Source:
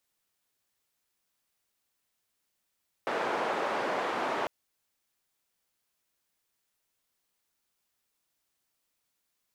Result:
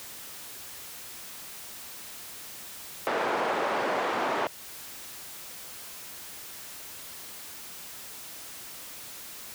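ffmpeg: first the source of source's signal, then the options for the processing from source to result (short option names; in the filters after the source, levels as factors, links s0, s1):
-f lavfi -i "anoisesrc=c=white:d=1.4:r=44100:seed=1,highpass=f=390,lowpass=f=980,volume=-11.1dB"
-filter_complex "[0:a]aeval=exprs='val(0)+0.5*0.0075*sgn(val(0))':c=same,highpass=43,asplit=2[s0][s1];[s1]acompressor=threshold=0.01:ratio=6,volume=1[s2];[s0][s2]amix=inputs=2:normalize=0"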